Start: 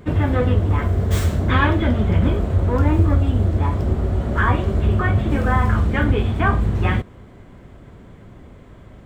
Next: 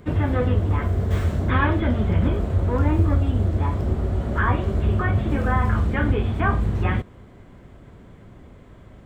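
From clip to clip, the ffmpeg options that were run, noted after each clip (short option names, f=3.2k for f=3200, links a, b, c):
-filter_complex "[0:a]acrossover=split=2900[a][b];[b]acompressor=threshold=-45dB:ratio=4:attack=1:release=60[c];[a][c]amix=inputs=2:normalize=0,volume=-3dB"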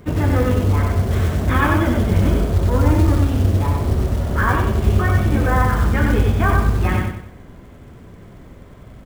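-af "acrusher=bits=6:mode=log:mix=0:aa=0.000001,aecho=1:1:94|188|282|376|470:0.708|0.276|0.108|0.042|0.0164,volume=2.5dB"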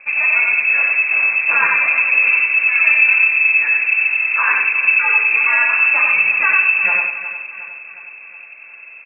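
-af "lowpass=f=2.3k:t=q:w=0.5098,lowpass=f=2.3k:t=q:w=0.6013,lowpass=f=2.3k:t=q:w=0.9,lowpass=f=2.3k:t=q:w=2.563,afreqshift=-2700,aecho=1:1:361|722|1083|1444|1805|2166:0.211|0.116|0.0639|0.0352|0.0193|0.0106,volume=1dB"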